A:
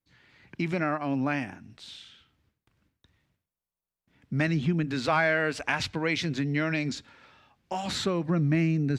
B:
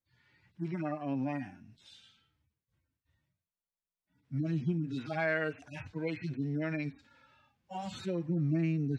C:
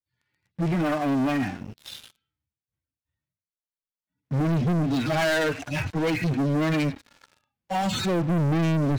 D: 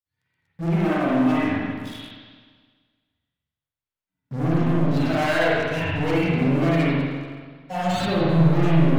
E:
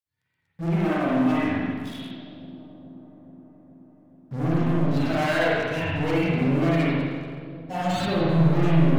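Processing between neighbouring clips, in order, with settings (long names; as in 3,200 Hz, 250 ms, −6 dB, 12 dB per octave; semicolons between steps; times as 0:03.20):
harmonic-percussive split with one part muted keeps harmonic; level −5.5 dB
leveller curve on the samples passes 5
tape wow and flutter 110 cents; spring reverb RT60 1.6 s, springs 43/55 ms, chirp 55 ms, DRR −7.5 dB; level −4.5 dB
delay with a low-pass on its return 425 ms, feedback 71%, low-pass 580 Hz, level −16 dB; level −2 dB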